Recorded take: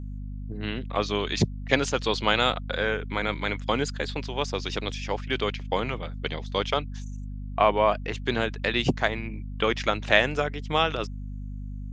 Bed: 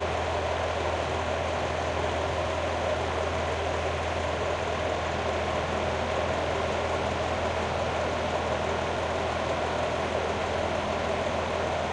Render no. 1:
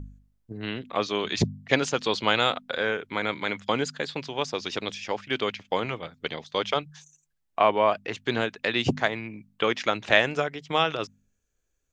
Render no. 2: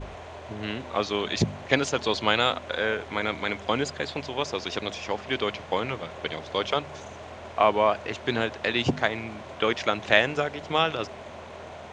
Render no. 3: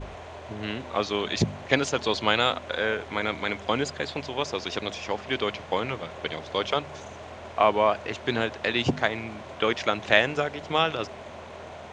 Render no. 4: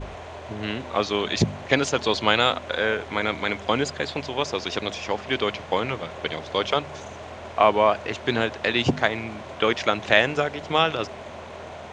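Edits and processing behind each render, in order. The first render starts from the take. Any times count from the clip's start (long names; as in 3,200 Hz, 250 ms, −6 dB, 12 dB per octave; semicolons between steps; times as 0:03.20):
hum removal 50 Hz, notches 5
mix in bed −13 dB
no processing that can be heard
level +3 dB; brickwall limiter −1 dBFS, peak gain reduction 2 dB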